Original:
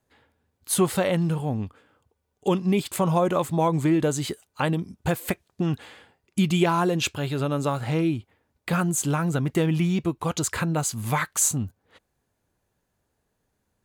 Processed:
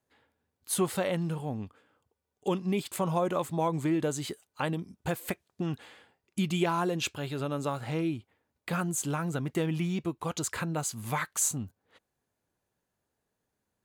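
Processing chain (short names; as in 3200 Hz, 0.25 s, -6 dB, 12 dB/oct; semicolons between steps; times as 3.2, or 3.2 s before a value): low shelf 84 Hz -9.5 dB; gain -6 dB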